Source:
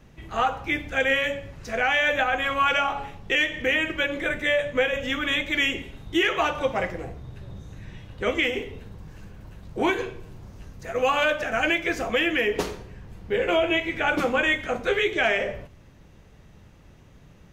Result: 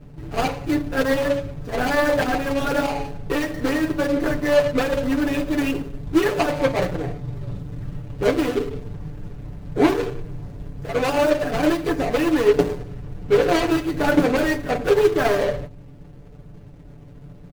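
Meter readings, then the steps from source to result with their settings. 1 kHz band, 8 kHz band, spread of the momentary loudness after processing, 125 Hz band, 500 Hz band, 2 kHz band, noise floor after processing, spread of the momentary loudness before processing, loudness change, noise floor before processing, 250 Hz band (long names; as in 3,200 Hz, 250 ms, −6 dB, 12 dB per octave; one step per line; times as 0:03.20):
+1.0 dB, +5.5 dB, 15 LU, +10.0 dB, +6.0 dB, −4.0 dB, −42 dBFS, 19 LU, +2.5 dB, −51 dBFS, +9.5 dB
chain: running median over 41 samples
comb filter 6.9 ms, depth 75%
level +8 dB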